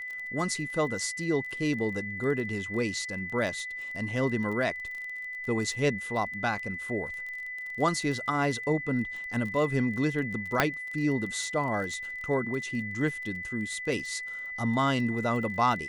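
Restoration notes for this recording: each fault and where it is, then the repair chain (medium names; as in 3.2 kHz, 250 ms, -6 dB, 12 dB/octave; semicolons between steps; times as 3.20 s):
crackle 23 per s -36 dBFS
whine 2 kHz -35 dBFS
10.60 s: pop -7 dBFS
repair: de-click; band-stop 2 kHz, Q 30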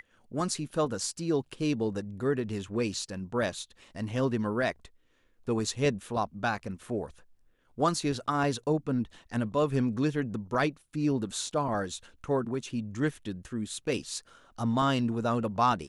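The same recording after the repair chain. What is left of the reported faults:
10.60 s: pop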